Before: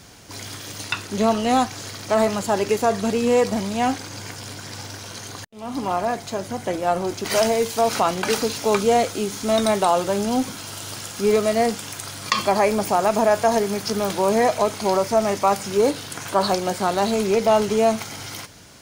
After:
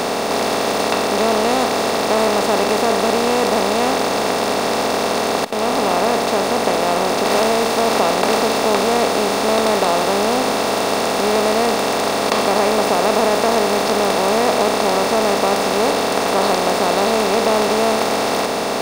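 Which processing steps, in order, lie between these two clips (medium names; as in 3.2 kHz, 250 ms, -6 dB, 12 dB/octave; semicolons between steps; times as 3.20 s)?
spectral levelling over time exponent 0.2; trim -6 dB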